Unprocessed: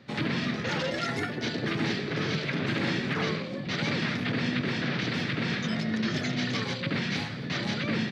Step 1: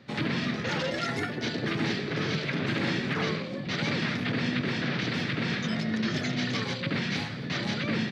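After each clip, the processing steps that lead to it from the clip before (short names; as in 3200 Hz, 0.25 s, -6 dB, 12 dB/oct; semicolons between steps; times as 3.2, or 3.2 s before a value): nothing audible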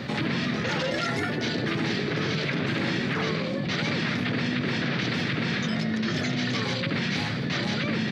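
fast leveller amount 70%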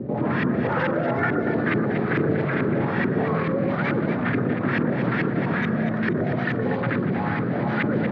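LFO low-pass saw up 2.3 Hz 350–2000 Hz; echo with dull and thin repeats by turns 0.119 s, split 1300 Hz, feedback 56%, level -2.5 dB; gain +1.5 dB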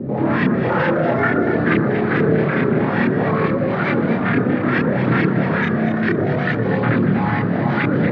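chorus voices 2, 0.29 Hz, delay 29 ms, depth 3 ms; gain +8.5 dB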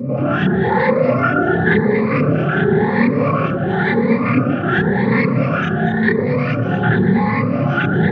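moving spectral ripple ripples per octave 0.94, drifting +0.94 Hz, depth 17 dB; notch comb 320 Hz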